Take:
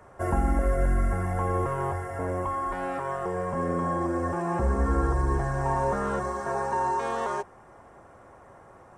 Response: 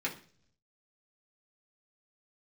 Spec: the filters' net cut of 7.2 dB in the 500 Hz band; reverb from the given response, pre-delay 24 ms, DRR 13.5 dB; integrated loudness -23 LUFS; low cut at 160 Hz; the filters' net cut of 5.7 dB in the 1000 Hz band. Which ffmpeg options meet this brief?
-filter_complex "[0:a]highpass=160,equalizer=f=500:t=o:g=-8,equalizer=f=1k:t=o:g=-4.5,asplit=2[a][b];[1:a]atrim=start_sample=2205,adelay=24[c];[b][c]afir=irnorm=-1:irlink=0,volume=-18.5dB[d];[a][d]amix=inputs=2:normalize=0,volume=11dB"

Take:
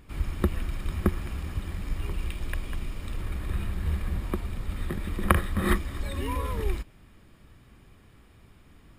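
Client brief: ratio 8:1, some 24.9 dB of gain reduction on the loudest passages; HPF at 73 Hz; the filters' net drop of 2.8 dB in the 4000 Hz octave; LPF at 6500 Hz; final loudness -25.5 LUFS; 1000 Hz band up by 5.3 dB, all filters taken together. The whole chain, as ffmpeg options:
-af "highpass=73,lowpass=6.5k,equalizer=f=1k:t=o:g=6.5,equalizer=f=4k:t=o:g=-4,acompressor=threshold=-39dB:ratio=8,volume=18.5dB"

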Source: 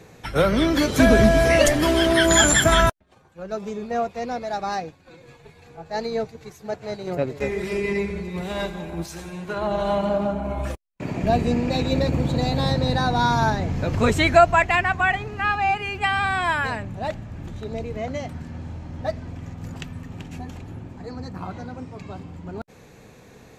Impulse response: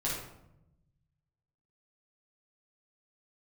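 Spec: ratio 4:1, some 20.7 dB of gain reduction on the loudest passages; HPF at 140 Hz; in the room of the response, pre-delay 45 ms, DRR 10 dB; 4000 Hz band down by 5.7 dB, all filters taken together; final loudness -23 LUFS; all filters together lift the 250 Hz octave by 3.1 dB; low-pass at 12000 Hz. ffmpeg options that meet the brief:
-filter_complex "[0:a]highpass=140,lowpass=12k,equalizer=f=250:t=o:g=4.5,equalizer=f=4k:t=o:g=-7.5,acompressor=threshold=-35dB:ratio=4,asplit=2[a][b];[1:a]atrim=start_sample=2205,adelay=45[c];[b][c]afir=irnorm=-1:irlink=0,volume=-15.5dB[d];[a][d]amix=inputs=2:normalize=0,volume=13dB"

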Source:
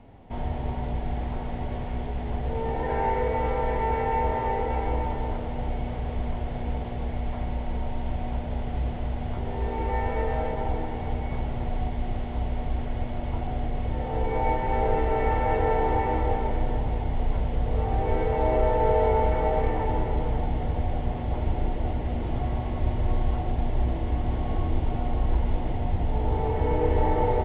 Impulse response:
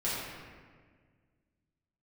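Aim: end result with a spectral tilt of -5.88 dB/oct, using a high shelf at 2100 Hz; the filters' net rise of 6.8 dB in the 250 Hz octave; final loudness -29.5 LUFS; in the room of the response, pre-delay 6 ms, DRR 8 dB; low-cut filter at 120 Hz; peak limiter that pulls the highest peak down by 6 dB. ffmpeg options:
-filter_complex "[0:a]highpass=120,equalizer=f=250:t=o:g=8.5,highshelf=f=2.1k:g=-5,alimiter=limit=-16dB:level=0:latency=1,asplit=2[a][b];[1:a]atrim=start_sample=2205,adelay=6[c];[b][c]afir=irnorm=-1:irlink=0,volume=-15.5dB[d];[a][d]amix=inputs=2:normalize=0,volume=-2dB"

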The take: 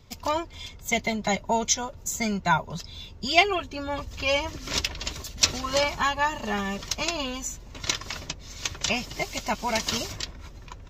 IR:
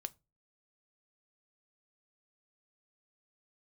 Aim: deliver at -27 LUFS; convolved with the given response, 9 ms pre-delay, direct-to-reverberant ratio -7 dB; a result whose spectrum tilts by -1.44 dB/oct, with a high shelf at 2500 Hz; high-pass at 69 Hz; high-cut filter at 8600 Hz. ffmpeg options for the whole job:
-filter_complex "[0:a]highpass=69,lowpass=8.6k,highshelf=f=2.5k:g=6,asplit=2[a][b];[1:a]atrim=start_sample=2205,adelay=9[c];[b][c]afir=irnorm=-1:irlink=0,volume=10dB[d];[a][d]amix=inputs=2:normalize=0,volume=-10.5dB"

